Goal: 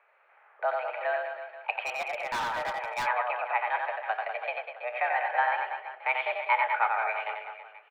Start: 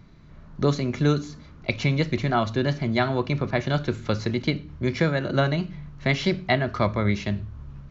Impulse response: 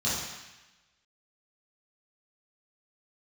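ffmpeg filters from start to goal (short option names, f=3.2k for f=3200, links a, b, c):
-filter_complex "[0:a]aecho=1:1:90|198|327.6|483.1|669.7:0.631|0.398|0.251|0.158|0.1,highpass=f=450:t=q:w=0.5412,highpass=f=450:t=q:w=1.307,lowpass=f=2.4k:t=q:w=0.5176,lowpass=f=2.4k:t=q:w=0.7071,lowpass=f=2.4k:t=q:w=1.932,afreqshift=230,asplit=3[a][b][c];[a]afade=t=out:st=1.85:d=0.02[d];[b]asoftclip=type=hard:threshold=-26.5dB,afade=t=in:st=1.85:d=0.02,afade=t=out:st=3.05:d=0.02[e];[c]afade=t=in:st=3.05:d=0.02[f];[d][e][f]amix=inputs=3:normalize=0,volume=-1.5dB"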